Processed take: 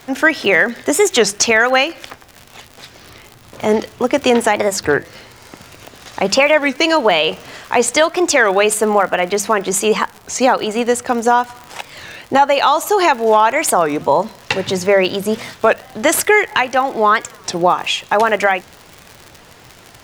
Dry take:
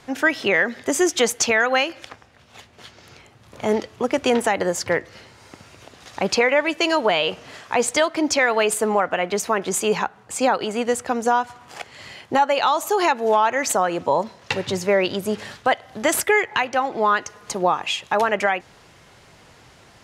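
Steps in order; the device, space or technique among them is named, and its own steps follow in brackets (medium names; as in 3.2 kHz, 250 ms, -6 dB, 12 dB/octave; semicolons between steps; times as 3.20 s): warped LP (warped record 33 1/3 rpm, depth 250 cents; crackle 81 per s -30 dBFS; pink noise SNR 36 dB); hum notches 50/100/150/200 Hz; trim +6 dB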